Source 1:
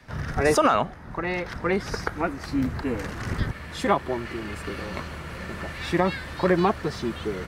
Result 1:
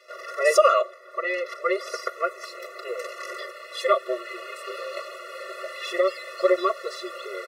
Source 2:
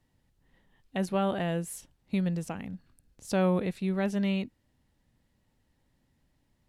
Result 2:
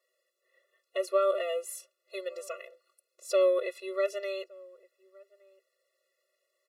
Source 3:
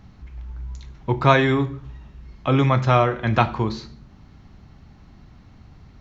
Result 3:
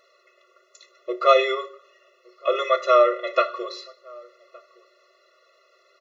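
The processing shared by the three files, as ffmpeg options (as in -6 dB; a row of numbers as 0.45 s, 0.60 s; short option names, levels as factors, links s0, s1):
-filter_complex "[0:a]aecho=1:1:3.5:0.83,asplit=2[s0][s1];[s1]adelay=1166,volume=0.0562,highshelf=f=4000:g=-26.2[s2];[s0][s2]amix=inputs=2:normalize=0,afftfilt=real='re*eq(mod(floor(b*sr/1024/360),2),1)':imag='im*eq(mod(floor(b*sr/1024/360),2),1)':win_size=1024:overlap=0.75,volume=1.19"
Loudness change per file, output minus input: +0.5 LU, -0.5 LU, -1.0 LU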